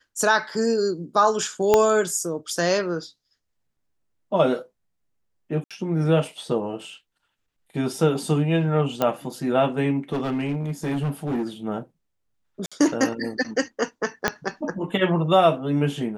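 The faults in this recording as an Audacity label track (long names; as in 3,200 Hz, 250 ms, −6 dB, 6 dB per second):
1.740000	1.740000	click −4 dBFS
5.640000	5.710000	drop-out 66 ms
9.020000	9.020000	click −9 dBFS
10.130000	11.440000	clipping −21.5 dBFS
12.660000	12.720000	drop-out 56 ms
14.280000	14.280000	click −5 dBFS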